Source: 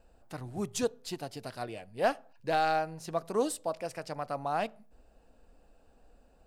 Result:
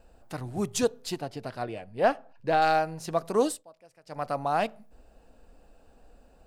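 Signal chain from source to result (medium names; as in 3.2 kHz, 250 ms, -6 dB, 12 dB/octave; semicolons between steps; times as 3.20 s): 1.18–2.62 s: treble shelf 4.2 kHz -12 dB; 3.46–4.23 s: dip -23.5 dB, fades 0.18 s; trim +5 dB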